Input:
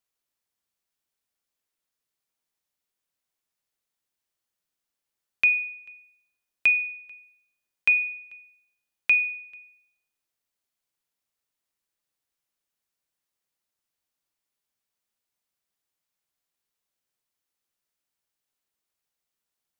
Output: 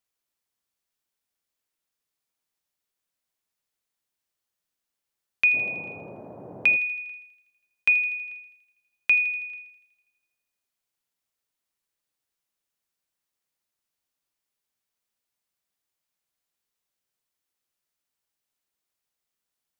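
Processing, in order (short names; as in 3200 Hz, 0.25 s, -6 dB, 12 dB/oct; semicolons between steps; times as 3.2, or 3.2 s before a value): 5.53–6.75 band noise 99–720 Hz -42 dBFS; on a send: thin delay 81 ms, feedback 64%, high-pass 2400 Hz, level -13 dB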